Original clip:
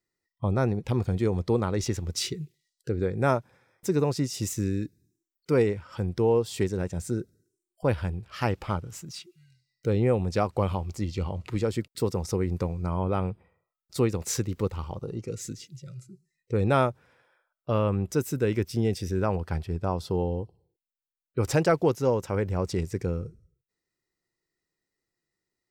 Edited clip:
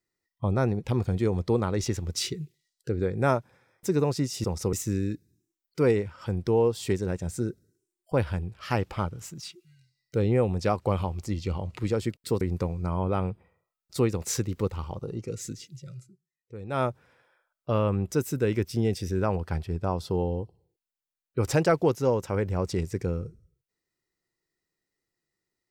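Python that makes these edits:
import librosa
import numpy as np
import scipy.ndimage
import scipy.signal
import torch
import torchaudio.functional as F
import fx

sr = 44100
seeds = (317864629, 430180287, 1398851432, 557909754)

y = fx.edit(x, sr, fx.move(start_s=12.12, length_s=0.29, to_s=4.44),
    fx.fade_down_up(start_s=15.95, length_s=0.95, db=-15.0, fade_s=0.22), tone=tone)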